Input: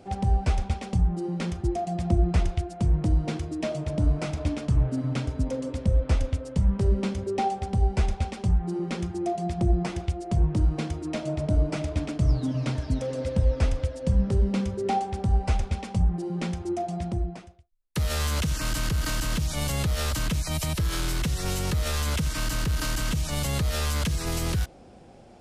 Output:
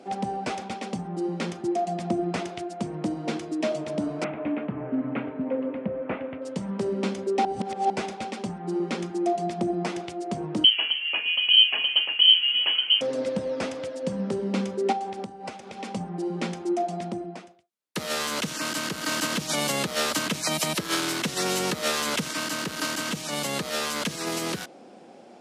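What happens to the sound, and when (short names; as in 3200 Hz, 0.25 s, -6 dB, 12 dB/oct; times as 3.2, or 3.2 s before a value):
4.24–6.42 steep low-pass 2600 Hz
7.45–7.9 reverse
10.64–13.01 inverted band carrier 3100 Hz
14.92–15.92 compressor 4:1, threshold -31 dBFS
19.11–22.31 fast leveller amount 70%
whole clip: HPF 210 Hz 24 dB/oct; high shelf 11000 Hz -8 dB; gain +3.5 dB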